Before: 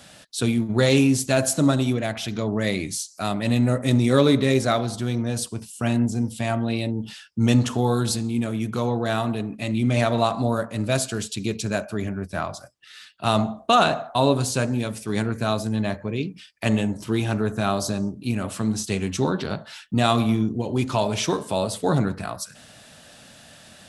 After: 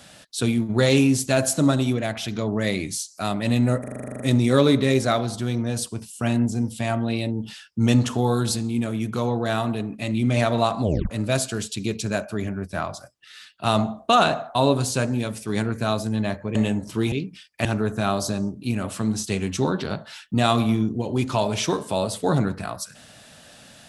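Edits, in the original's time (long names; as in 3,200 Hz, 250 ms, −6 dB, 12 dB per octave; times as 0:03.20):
0:03.80: stutter 0.04 s, 11 plays
0:10.43: tape stop 0.27 s
0:16.15–0:16.68: move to 0:17.25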